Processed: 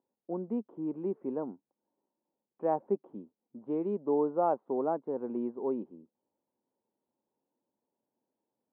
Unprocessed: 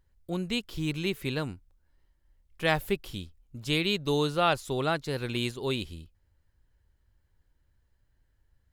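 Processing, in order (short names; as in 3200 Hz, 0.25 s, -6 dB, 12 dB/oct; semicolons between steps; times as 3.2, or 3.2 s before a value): elliptic band-pass 220–930 Hz, stop band 70 dB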